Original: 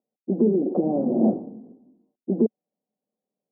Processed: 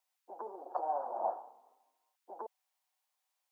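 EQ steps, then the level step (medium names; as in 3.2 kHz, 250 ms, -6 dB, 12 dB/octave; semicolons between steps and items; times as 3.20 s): Chebyshev high-pass 910 Hz, order 4; +12.0 dB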